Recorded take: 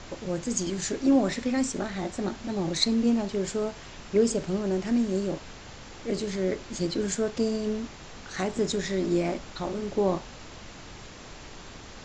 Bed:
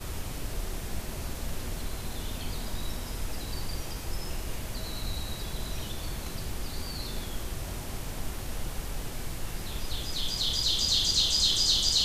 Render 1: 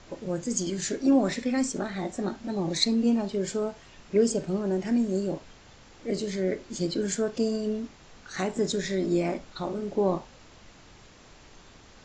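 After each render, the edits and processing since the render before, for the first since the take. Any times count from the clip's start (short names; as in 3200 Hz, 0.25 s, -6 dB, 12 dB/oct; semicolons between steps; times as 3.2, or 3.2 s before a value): noise print and reduce 8 dB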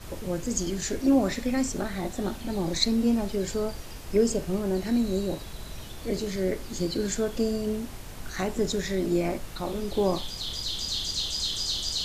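add bed -5 dB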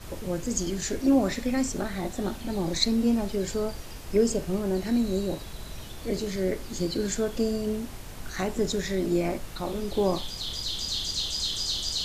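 nothing audible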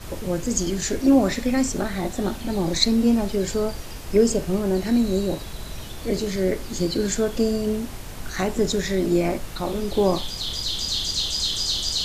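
gain +5 dB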